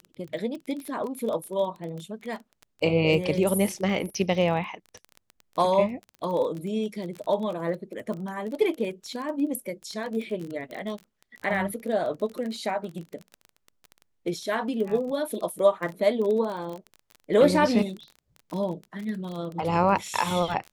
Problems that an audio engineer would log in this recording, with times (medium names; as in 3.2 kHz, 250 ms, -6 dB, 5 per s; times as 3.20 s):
crackle 22 per s -31 dBFS